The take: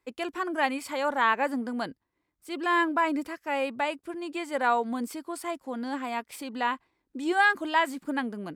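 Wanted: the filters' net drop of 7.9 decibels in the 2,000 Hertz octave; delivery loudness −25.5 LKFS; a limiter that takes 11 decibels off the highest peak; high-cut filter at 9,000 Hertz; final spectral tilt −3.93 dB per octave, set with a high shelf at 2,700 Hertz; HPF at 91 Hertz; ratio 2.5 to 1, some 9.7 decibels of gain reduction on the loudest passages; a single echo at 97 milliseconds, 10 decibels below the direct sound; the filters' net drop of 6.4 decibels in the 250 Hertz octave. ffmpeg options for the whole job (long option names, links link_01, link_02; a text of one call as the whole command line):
ffmpeg -i in.wav -af "highpass=91,lowpass=9000,equalizer=frequency=250:width_type=o:gain=-8,equalizer=frequency=2000:width_type=o:gain=-8.5,highshelf=frequency=2700:gain=-4.5,acompressor=threshold=-37dB:ratio=2.5,alimiter=level_in=10.5dB:limit=-24dB:level=0:latency=1,volume=-10.5dB,aecho=1:1:97:0.316,volume=17.5dB" out.wav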